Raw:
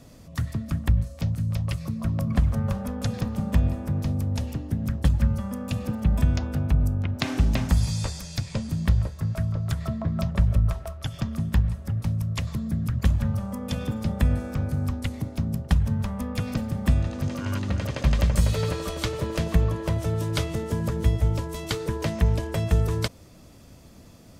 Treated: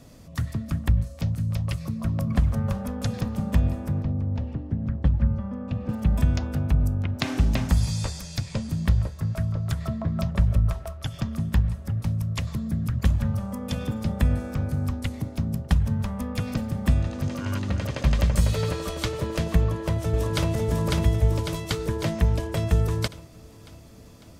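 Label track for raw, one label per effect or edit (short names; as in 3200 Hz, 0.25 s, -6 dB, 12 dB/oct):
4.020000	5.890000	tape spacing loss at 10 kHz 34 dB
19.580000	20.490000	echo throw 0.55 s, feedback 60%, level -1.5 dB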